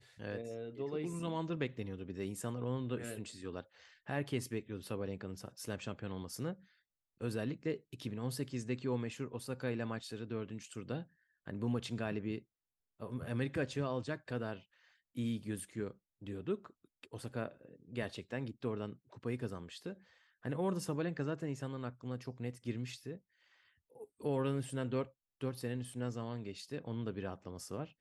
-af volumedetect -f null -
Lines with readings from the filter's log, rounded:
mean_volume: -40.8 dB
max_volume: -23.0 dB